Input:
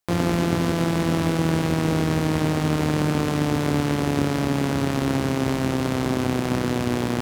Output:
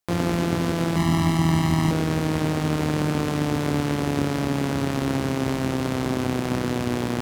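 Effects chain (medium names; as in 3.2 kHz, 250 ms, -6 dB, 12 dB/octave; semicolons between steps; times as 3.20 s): 0.96–1.91 s: comb 1 ms, depth 90%; trim -1.5 dB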